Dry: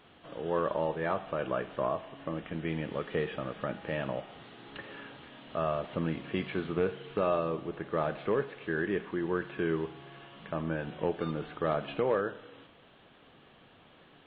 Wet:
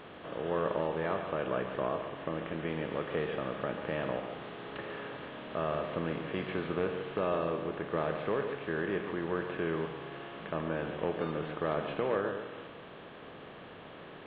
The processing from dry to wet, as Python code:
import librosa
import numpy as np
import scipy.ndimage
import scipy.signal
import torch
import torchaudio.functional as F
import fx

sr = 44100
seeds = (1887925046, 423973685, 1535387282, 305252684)

p1 = fx.bin_compress(x, sr, power=0.6)
p2 = p1 + fx.echo_single(p1, sr, ms=142, db=-9.0, dry=0)
y = p2 * librosa.db_to_amplitude(-5.5)